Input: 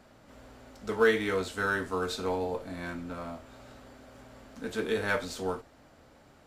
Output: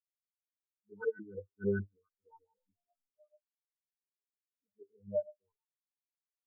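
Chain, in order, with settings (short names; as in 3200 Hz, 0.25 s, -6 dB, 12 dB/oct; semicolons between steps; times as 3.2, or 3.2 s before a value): rotary speaker horn 0.65 Hz; 1.36–2.04 low shelf 410 Hz +5 dB; resonator 100 Hz, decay 0.54 s, harmonics all, mix 100%; LFO low-pass saw up 6.7 Hz 290–1600 Hz; spectral expander 4:1; gain +4.5 dB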